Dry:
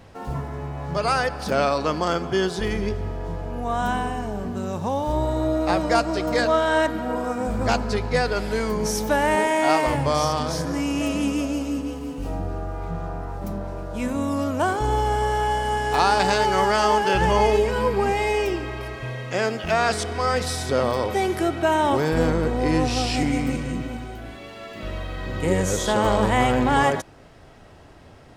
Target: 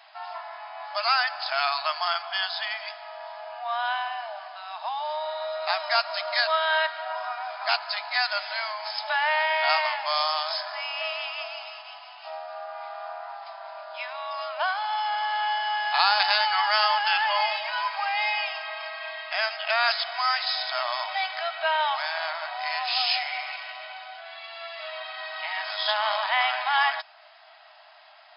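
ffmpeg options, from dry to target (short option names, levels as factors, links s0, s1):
-filter_complex "[0:a]afftfilt=real='re*between(b*sr/4096,600,5200)':imag='im*between(b*sr/4096,600,5200)':win_size=4096:overlap=0.75,acrossover=split=880[s0][s1];[s0]acompressor=threshold=0.0158:ratio=6[s2];[s1]crystalizer=i=2.5:c=0[s3];[s2][s3]amix=inputs=2:normalize=0"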